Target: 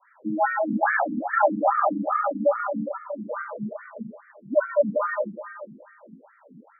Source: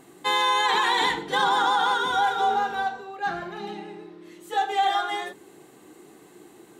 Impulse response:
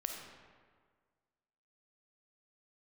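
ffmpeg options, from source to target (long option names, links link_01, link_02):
-filter_complex "[0:a]adynamicequalizer=threshold=0.0178:dfrequency=790:dqfactor=1.9:tfrequency=790:tqfactor=1.9:attack=5:release=100:ratio=0.375:range=2:mode=cutabove:tftype=bell,highpass=frequency=280:width_type=q:width=0.5412,highpass=frequency=280:width_type=q:width=1.307,lowpass=frequency=2400:width_type=q:width=0.5176,lowpass=frequency=2400:width_type=q:width=0.7071,lowpass=frequency=2400:width_type=q:width=1.932,afreqshift=-200,asplit=2[link_01][link_02];[link_02]lowshelf=frequency=210:gain=11.5[link_03];[1:a]atrim=start_sample=2205,asetrate=30870,aresample=44100[link_04];[link_03][link_04]afir=irnorm=-1:irlink=0,volume=0.5dB[link_05];[link_01][link_05]amix=inputs=2:normalize=0,afftfilt=real='re*between(b*sr/1024,240*pow(1700/240,0.5+0.5*sin(2*PI*2.4*pts/sr))/1.41,240*pow(1700/240,0.5+0.5*sin(2*PI*2.4*pts/sr))*1.41)':imag='im*between(b*sr/1024,240*pow(1700/240,0.5+0.5*sin(2*PI*2.4*pts/sr))/1.41,240*pow(1700/240,0.5+0.5*sin(2*PI*2.4*pts/sr))*1.41)':win_size=1024:overlap=0.75"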